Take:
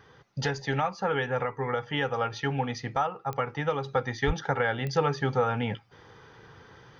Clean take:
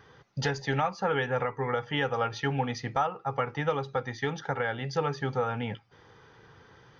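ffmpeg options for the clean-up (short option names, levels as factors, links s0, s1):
-filter_complex "[0:a]adeclick=t=4,asplit=3[s0][s1][s2];[s0]afade=t=out:st=4.26:d=0.02[s3];[s1]highpass=f=140:w=0.5412,highpass=f=140:w=1.3066,afade=t=in:st=4.26:d=0.02,afade=t=out:st=4.38:d=0.02[s4];[s2]afade=t=in:st=4.38:d=0.02[s5];[s3][s4][s5]amix=inputs=3:normalize=0,asetnsamples=n=441:p=0,asendcmd='3.84 volume volume -3.5dB',volume=1"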